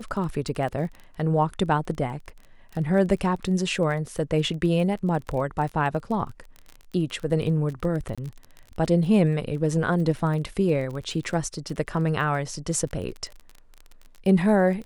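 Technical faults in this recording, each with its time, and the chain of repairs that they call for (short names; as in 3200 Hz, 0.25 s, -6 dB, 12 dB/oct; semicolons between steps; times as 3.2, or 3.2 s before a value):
crackle 21/s -32 dBFS
8.15–8.18 gap 26 ms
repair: de-click; interpolate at 8.15, 26 ms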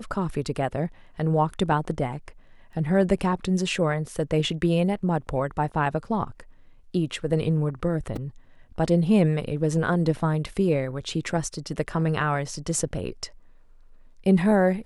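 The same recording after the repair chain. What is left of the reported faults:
none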